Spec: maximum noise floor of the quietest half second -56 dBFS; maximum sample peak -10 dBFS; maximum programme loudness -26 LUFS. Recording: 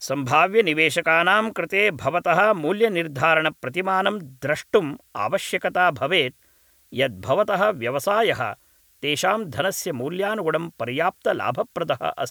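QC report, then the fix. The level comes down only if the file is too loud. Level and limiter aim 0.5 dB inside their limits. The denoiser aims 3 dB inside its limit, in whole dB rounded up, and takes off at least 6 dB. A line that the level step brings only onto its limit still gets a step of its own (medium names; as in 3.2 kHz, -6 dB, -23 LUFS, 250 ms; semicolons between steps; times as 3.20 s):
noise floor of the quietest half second -59 dBFS: pass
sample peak -5.5 dBFS: fail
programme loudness -21.5 LUFS: fail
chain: trim -5 dB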